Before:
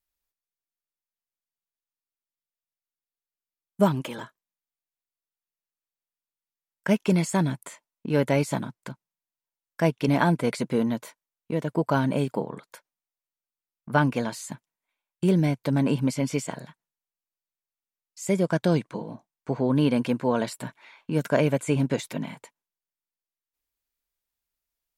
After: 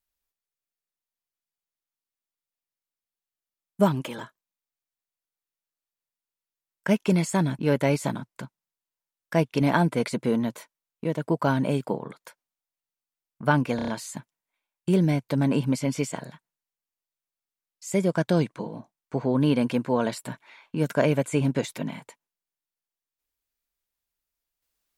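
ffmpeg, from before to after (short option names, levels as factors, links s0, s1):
-filter_complex "[0:a]asplit=6[s0][s1][s2][s3][s4][s5];[s0]atrim=end=7.592[s6];[s1]atrim=start=8.058:end=14.262[s7];[s2]atrim=start=14.228:end=14.262[s8];[s3]atrim=start=14.228:end=14.262[s9];[s4]atrim=start=14.228:end=14.262[s10];[s5]atrim=start=14.228[s11];[s6][s7]acrossfade=d=0.004:c1=hsin:c2=hsin[s12];[s12][s8]acrossfade=d=0.004:c1=hsin:c2=hsin[s13];[s13][s9]acrossfade=d=0.004:c1=hsin:c2=hsin[s14];[s14][s10]acrossfade=d=0.004:c1=hsin:c2=hsin[s15];[s15][s11]acrossfade=d=0.004:c1=hsin:c2=hsin"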